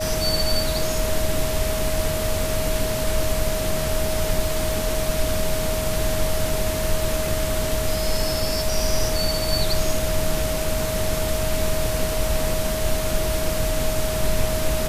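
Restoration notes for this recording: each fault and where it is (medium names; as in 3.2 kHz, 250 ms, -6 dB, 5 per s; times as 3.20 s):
whine 630 Hz -26 dBFS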